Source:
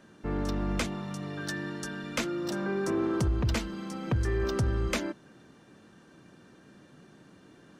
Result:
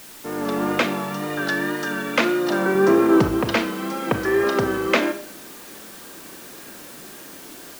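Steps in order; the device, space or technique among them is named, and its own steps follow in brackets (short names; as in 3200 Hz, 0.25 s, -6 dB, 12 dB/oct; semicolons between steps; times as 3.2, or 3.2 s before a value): dictaphone (BPF 310–3100 Hz; AGC gain up to 9 dB; wow and flutter; white noise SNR 19 dB); 2.75–3.37 low shelf 180 Hz +9 dB; Schroeder reverb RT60 0.46 s, combs from 27 ms, DRR 9 dB; gain +5 dB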